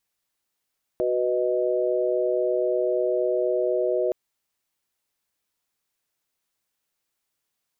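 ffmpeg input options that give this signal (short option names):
-f lavfi -i "aevalsrc='0.0562*(sin(2*PI*369.99*t)+sin(2*PI*493.88*t)+sin(2*PI*622.25*t))':d=3.12:s=44100"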